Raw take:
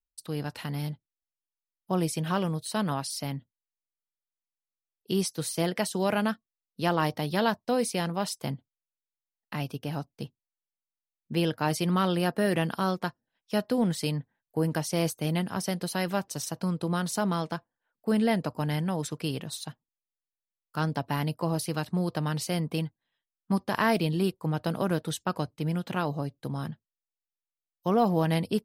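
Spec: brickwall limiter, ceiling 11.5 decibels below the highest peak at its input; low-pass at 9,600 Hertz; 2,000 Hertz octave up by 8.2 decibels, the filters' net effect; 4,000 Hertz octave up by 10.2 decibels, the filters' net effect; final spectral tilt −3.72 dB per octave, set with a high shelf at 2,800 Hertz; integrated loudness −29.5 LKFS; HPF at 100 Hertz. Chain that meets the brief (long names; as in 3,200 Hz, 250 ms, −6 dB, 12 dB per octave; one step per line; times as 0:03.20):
high-pass filter 100 Hz
low-pass filter 9,600 Hz
parametric band 2,000 Hz +6.5 dB
high-shelf EQ 2,800 Hz +7.5 dB
parametric band 4,000 Hz +5 dB
brickwall limiter −16 dBFS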